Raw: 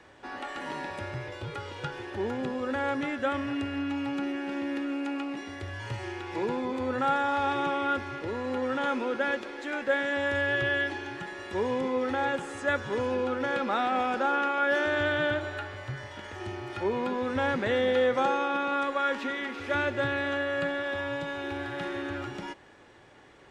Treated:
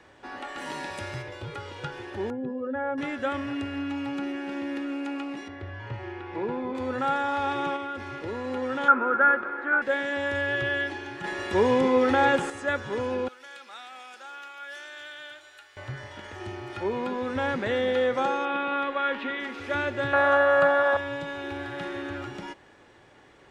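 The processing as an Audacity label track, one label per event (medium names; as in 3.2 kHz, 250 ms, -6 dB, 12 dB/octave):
0.570000	1.210000	treble shelf 4.9 kHz -> 2.9 kHz +11 dB
2.300000	2.980000	spectral contrast enhancement exponent 1.8
5.480000	6.750000	Bessel low-pass 2.1 kHz
7.760000	8.160000	compression, threshold -30 dBFS
8.880000	9.820000	resonant low-pass 1.4 kHz, resonance Q 6.7
11.240000	12.500000	gain +7.5 dB
13.280000	15.770000	differentiator
18.450000	19.400000	resonant high shelf 4.5 kHz -12 dB, Q 1.5
20.130000	20.970000	high-order bell 940 Hz +14.5 dB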